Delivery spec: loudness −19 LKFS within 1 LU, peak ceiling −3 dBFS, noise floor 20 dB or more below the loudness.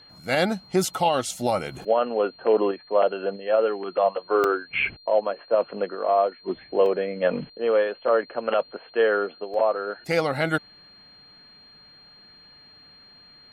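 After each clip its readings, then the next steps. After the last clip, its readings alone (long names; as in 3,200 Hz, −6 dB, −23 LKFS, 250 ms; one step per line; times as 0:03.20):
number of dropouts 3; longest dropout 1.4 ms; interfering tone 4,200 Hz; level of the tone −49 dBFS; integrated loudness −24.5 LKFS; sample peak −9.0 dBFS; target loudness −19.0 LKFS
→ repair the gap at 0:04.44/0:06.86/0:09.54, 1.4 ms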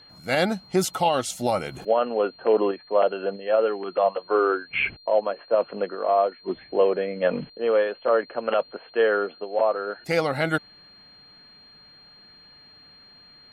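number of dropouts 0; interfering tone 4,200 Hz; level of the tone −49 dBFS
→ notch filter 4,200 Hz, Q 30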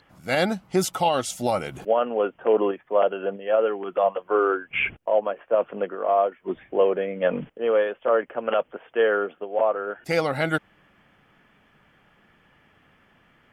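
interfering tone none found; integrated loudness −24.5 LKFS; sample peak −9.0 dBFS; target loudness −19.0 LKFS
→ level +5.5 dB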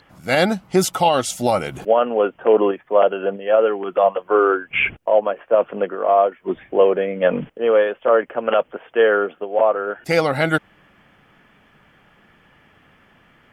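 integrated loudness −19.0 LKFS; sample peak −3.5 dBFS; background noise floor −55 dBFS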